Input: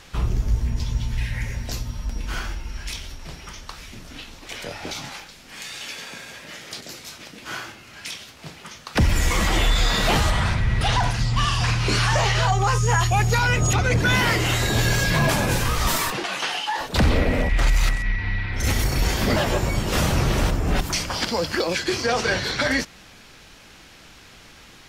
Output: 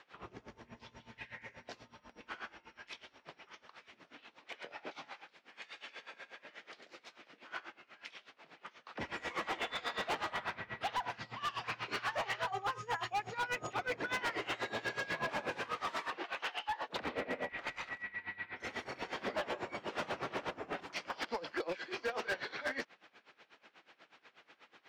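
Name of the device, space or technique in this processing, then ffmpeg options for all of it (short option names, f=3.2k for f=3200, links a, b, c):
helicopter radio: -af "highpass=400,lowpass=2.6k,aeval=exprs='val(0)*pow(10,-20*(0.5-0.5*cos(2*PI*8.2*n/s))/20)':c=same,asoftclip=type=hard:threshold=-25dB,volume=-6dB"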